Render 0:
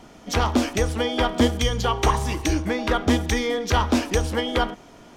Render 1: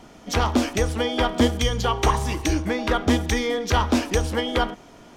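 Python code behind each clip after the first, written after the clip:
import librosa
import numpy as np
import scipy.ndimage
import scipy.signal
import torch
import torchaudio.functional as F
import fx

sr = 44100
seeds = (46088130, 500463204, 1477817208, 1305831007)

y = x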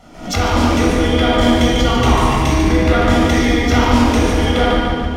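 y = fx.echo_feedback(x, sr, ms=145, feedback_pct=51, wet_db=-6.0)
y = fx.room_shoebox(y, sr, seeds[0], volume_m3=3800.0, walls='mixed', distance_m=6.9)
y = fx.pre_swell(y, sr, db_per_s=100.0)
y = y * librosa.db_to_amplitude(-2.5)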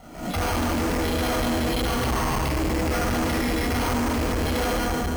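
y = fx.tube_stage(x, sr, drive_db=22.0, bias=0.4)
y = np.repeat(scipy.signal.resample_poly(y, 1, 6), 6)[:len(y)]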